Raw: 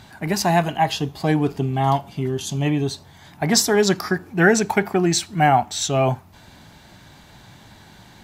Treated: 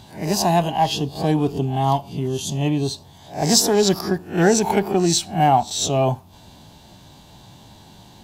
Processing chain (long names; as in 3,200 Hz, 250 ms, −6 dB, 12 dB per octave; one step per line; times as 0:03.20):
peak hold with a rise ahead of every peak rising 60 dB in 0.33 s
harmonic generator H 8 −36 dB, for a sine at −1.5 dBFS
flat-topped bell 1,700 Hz −9.5 dB 1.1 octaves